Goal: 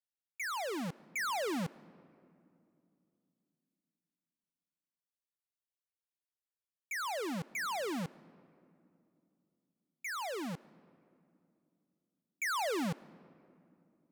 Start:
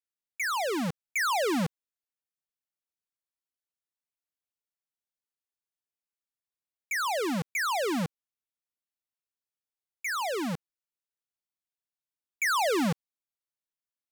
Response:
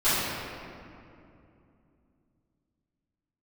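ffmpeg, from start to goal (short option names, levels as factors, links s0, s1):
-filter_complex "[0:a]asplit=2[s0][s1];[1:a]atrim=start_sample=2205,adelay=80[s2];[s1][s2]afir=irnorm=-1:irlink=0,volume=0.0119[s3];[s0][s3]amix=inputs=2:normalize=0,volume=0.398"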